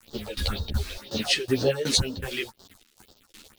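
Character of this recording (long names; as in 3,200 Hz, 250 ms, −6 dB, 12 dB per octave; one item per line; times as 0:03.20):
a quantiser's noise floor 8 bits, dither none
phaser sweep stages 4, 2 Hz, lowest notch 100–2,300 Hz
tremolo saw down 2.7 Hz, depth 90%
a shimmering, thickened sound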